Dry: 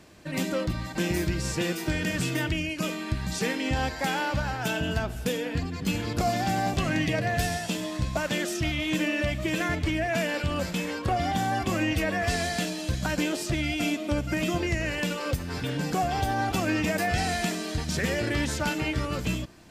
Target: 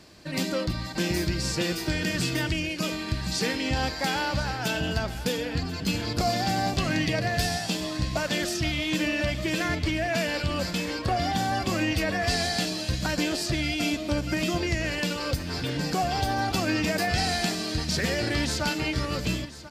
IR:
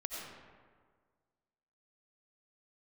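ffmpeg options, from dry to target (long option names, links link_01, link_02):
-filter_complex "[0:a]equalizer=frequency=4600:width_type=o:width=0.52:gain=9,asplit=2[link_01][link_02];[link_02]aecho=0:1:1039:0.168[link_03];[link_01][link_03]amix=inputs=2:normalize=0"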